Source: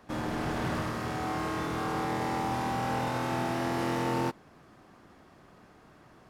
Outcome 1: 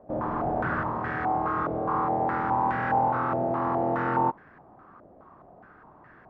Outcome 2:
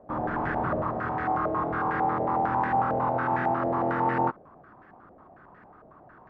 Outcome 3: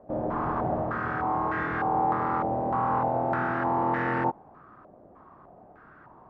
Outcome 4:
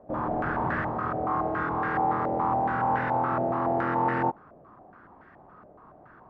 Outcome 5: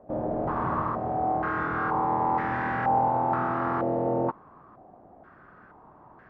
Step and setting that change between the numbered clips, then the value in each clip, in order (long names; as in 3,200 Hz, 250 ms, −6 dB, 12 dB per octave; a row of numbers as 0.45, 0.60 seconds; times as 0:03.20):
low-pass on a step sequencer, speed: 4.8, 11, 3.3, 7.1, 2.1 Hertz